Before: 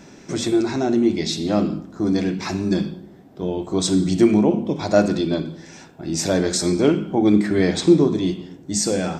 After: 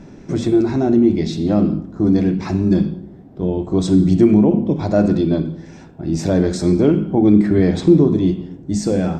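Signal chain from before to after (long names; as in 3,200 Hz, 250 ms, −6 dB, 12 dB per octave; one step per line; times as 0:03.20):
in parallel at +1 dB: brickwall limiter −10 dBFS, peak gain reduction 8 dB
on the sum: spectral tilt −3 dB per octave
level −7 dB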